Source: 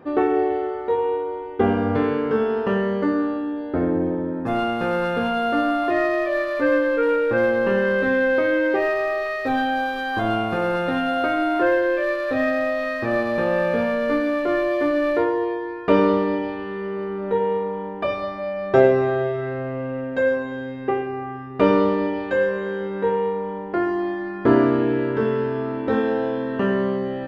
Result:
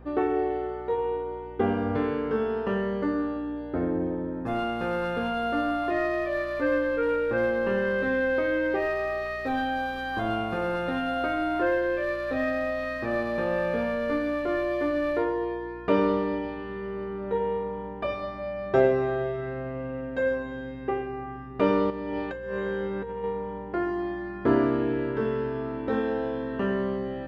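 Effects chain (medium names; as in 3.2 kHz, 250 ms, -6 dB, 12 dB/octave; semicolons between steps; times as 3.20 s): 21.90–23.24 s: compressor with a negative ratio -26 dBFS, ratio -1; hum 60 Hz, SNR 20 dB; trim -6 dB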